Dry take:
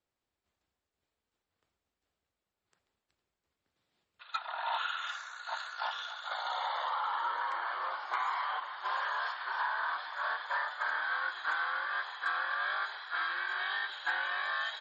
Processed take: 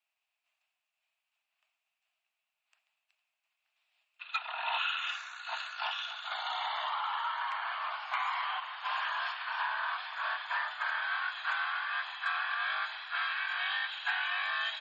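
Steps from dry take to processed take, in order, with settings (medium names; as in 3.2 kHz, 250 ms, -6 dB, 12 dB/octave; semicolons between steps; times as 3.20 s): Chebyshev high-pass 620 Hz, order 8; peaking EQ 2.6 kHz +15 dB 0.46 oct; trim -1 dB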